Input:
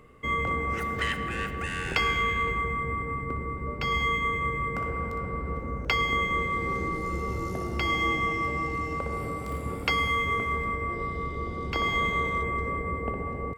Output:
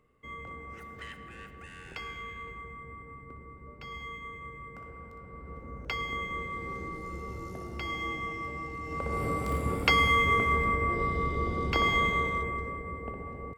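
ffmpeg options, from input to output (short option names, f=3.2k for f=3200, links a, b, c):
-af "volume=2.5dB,afade=t=in:st=5.25:d=0.62:silence=0.473151,afade=t=in:st=8.82:d=0.49:silence=0.281838,afade=t=out:st=11.6:d=1.17:silence=0.316228"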